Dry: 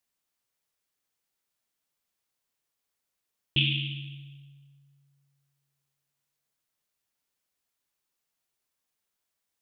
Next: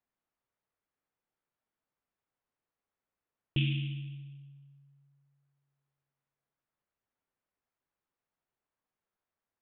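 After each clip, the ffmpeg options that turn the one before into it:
-af "lowpass=1600"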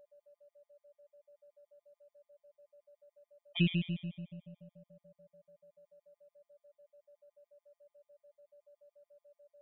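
-af "afftfilt=real='hypot(re,im)*cos(PI*b)':imag='0':win_size=1024:overlap=0.75,aeval=exprs='val(0)+0.000708*sin(2*PI*580*n/s)':c=same,afftfilt=real='re*gt(sin(2*PI*6.9*pts/sr)*(1-2*mod(floor(b*sr/1024/620),2)),0)':imag='im*gt(sin(2*PI*6.9*pts/sr)*(1-2*mod(floor(b*sr/1024/620),2)),0)':win_size=1024:overlap=0.75,volume=2"

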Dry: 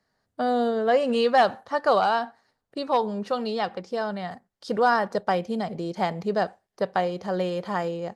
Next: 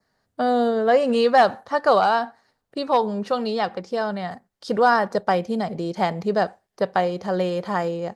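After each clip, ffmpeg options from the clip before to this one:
-af "adynamicequalizer=threshold=0.00355:dfrequency=3000:dqfactor=2.6:tfrequency=3000:tqfactor=2.6:attack=5:release=100:ratio=0.375:range=2:mode=cutabove:tftype=bell,volume=1.5"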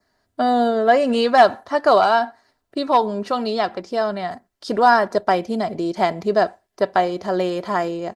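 -af "aecho=1:1:3:0.47,volume=1.33"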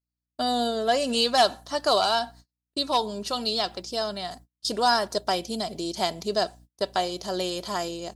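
-af "aeval=exprs='val(0)+0.00708*(sin(2*PI*60*n/s)+sin(2*PI*2*60*n/s)/2+sin(2*PI*3*60*n/s)/3+sin(2*PI*4*60*n/s)/4+sin(2*PI*5*60*n/s)/5)':c=same,agate=range=0.0158:threshold=0.0126:ratio=16:detection=peak,aexciter=amount=4.5:drive=7.4:freq=2900,volume=0.376"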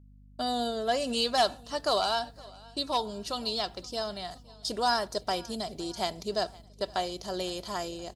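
-af "aecho=1:1:516|1032|1548|2064:0.0668|0.0381|0.0217|0.0124,aeval=exprs='val(0)+0.00398*(sin(2*PI*50*n/s)+sin(2*PI*2*50*n/s)/2+sin(2*PI*3*50*n/s)/3+sin(2*PI*4*50*n/s)/4+sin(2*PI*5*50*n/s)/5)':c=same,volume=0.562"

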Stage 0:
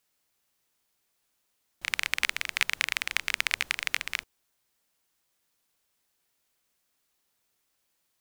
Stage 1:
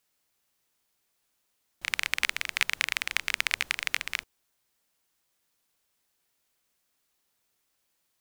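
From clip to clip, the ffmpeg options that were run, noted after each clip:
-af anull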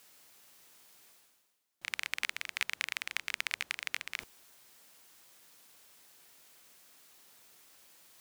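-af "highpass=f=150:p=1,areverse,acompressor=mode=upward:threshold=0.0224:ratio=2.5,areverse,volume=0.422"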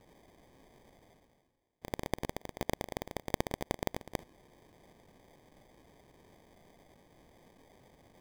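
-af "lowshelf=f=560:t=q:w=1.5:g=-8,acrusher=samples=32:mix=1:aa=0.000001,volume=0.891"

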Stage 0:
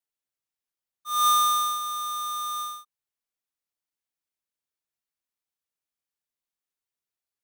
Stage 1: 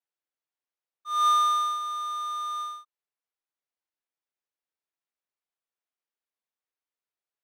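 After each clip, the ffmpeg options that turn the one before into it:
-af "highpass=330,aemphasis=mode=reproduction:type=75fm"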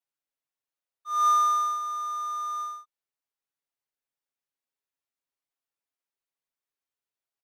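-af "aecho=1:1:7.3:0.78,volume=0.708"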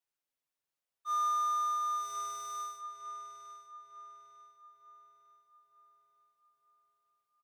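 -filter_complex "[0:a]asplit=2[s0][s1];[s1]adelay=902,lowpass=f=3200:p=1,volume=0.398,asplit=2[s2][s3];[s3]adelay=902,lowpass=f=3200:p=1,volume=0.48,asplit=2[s4][s5];[s5]adelay=902,lowpass=f=3200:p=1,volume=0.48,asplit=2[s6][s7];[s7]adelay=902,lowpass=f=3200:p=1,volume=0.48,asplit=2[s8][s9];[s9]adelay=902,lowpass=f=3200:p=1,volume=0.48,asplit=2[s10][s11];[s11]adelay=902,lowpass=f=3200:p=1,volume=0.48[s12];[s0][s2][s4][s6][s8][s10][s12]amix=inputs=7:normalize=0,acompressor=threshold=0.0316:ratio=6"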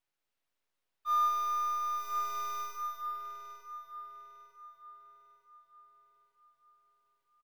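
-filter_complex "[0:a]acrossover=split=270|1700|5000[s0][s1][s2][s3];[s3]aeval=exprs='abs(val(0))':c=same[s4];[s0][s1][s2][s4]amix=inputs=4:normalize=0,aecho=1:1:198|396|594|792|990:0.501|0.221|0.097|0.0427|0.0188,volume=1.5"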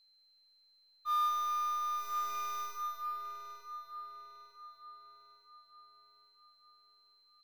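-filter_complex "[0:a]acrossover=split=1200[s0][s1];[s0]asoftclip=type=tanh:threshold=0.0112[s2];[s2][s1]amix=inputs=2:normalize=0,aeval=exprs='val(0)+0.000562*sin(2*PI*4100*n/s)':c=same"

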